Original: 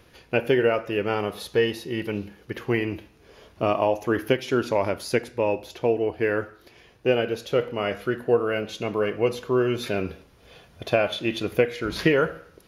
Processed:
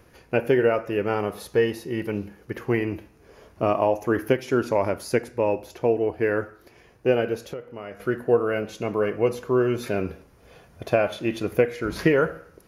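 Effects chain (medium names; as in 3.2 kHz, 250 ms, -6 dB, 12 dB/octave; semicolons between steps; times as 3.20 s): peaking EQ 3.5 kHz -9.5 dB 0.93 oct; 7.36–8.00 s: compression 5:1, threshold -35 dBFS, peak gain reduction 16 dB; trim +1 dB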